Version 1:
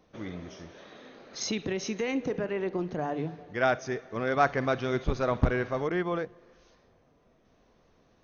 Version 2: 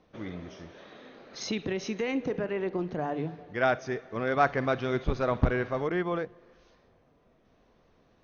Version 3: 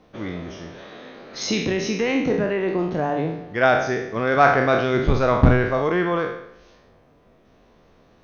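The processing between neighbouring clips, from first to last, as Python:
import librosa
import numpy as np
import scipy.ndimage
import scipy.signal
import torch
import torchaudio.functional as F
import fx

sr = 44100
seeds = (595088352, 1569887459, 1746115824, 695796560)

y1 = scipy.signal.sosfilt(scipy.signal.butter(2, 5000.0, 'lowpass', fs=sr, output='sos'), x)
y2 = fx.spec_trails(y1, sr, decay_s=0.72)
y2 = y2 * 10.0 ** (7.0 / 20.0)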